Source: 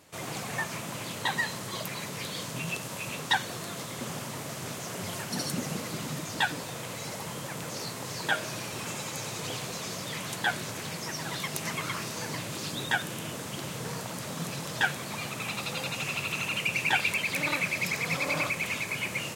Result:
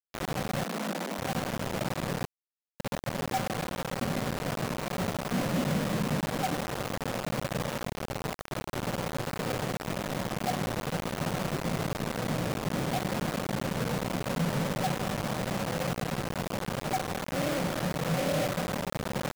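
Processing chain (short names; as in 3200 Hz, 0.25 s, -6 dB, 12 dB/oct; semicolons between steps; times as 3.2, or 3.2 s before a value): 7.64–8.73 compressor 4:1, threshold -33 dBFS, peak gain reduction 10 dB; rippled Chebyshev low-pass 780 Hz, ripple 6 dB; 2.25–2.8 differentiator; spring tank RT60 3.5 s, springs 52 ms, chirp 35 ms, DRR 8 dB; companded quantiser 2-bit; 0.64–1.19 steep high-pass 170 Hz 96 dB/oct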